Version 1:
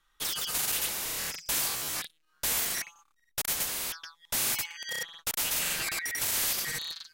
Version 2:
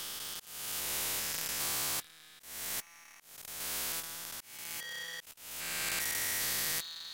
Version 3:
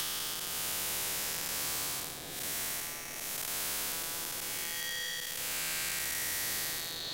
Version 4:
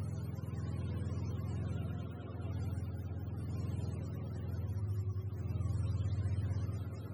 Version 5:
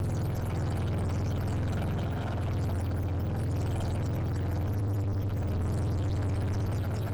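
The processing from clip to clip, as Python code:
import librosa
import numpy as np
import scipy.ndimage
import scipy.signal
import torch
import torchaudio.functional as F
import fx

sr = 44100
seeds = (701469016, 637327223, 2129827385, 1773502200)

y1 = fx.spec_steps(x, sr, hold_ms=400)
y1 = fx.mod_noise(y1, sr, seeds[0], snr_db=20)
y1 = fx.auto_swell(y1, sr, attack_ms=563.0)
y2 = fx.spec_blur(y1, sr, span_ms=321.0)
y2 = fx.echo_bbd(y2, sr, ms=212, stages=1024, feedback_pct=68, wet_db=-5.5)
y2 = fx.band_squash(y2, sr, depth_pct=100)
y2 = F.gain(torch.from_numpy(y2), 1.5).numpy()
y3 = fx.octave_mirror(y2, sr, pivot_hz=430.0)
y3 = F.gain(torch.from_numpy(y3), 1.5).numpy()
y4 = fx.lower_of_two(y3, sr, delay_ms=1.3)
y4 = fx.leveller(y4, sr, passes=5)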